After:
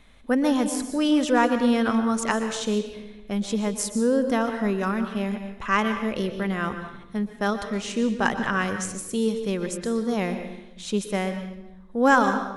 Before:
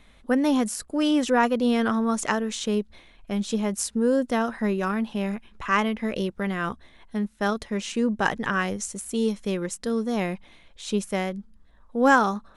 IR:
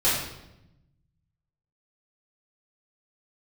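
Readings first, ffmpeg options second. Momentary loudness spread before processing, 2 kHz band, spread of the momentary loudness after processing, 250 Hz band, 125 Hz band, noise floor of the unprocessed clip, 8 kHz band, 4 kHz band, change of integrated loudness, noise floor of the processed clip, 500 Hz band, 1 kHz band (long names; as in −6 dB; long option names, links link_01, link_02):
10 LU, +0.5 dB, 11 LU, +1.0 dB, +1.0 dB, −54 dBFS, +0.5 dB, +0.5 dB, +0.5 dB, −45 dBFS, +0.5 dB, +0.5 dB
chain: -filter_complex "[0:a]asplit=2[link_01][link_02];[1:a]atrim=start_sample=2205,adelay=116[link_03];[link_02][link_03]afir=irnorm=-1:irlink=0,volume=-22.5dB[link_04];[link_01][link_04]amix=inputs=2:normalize=0"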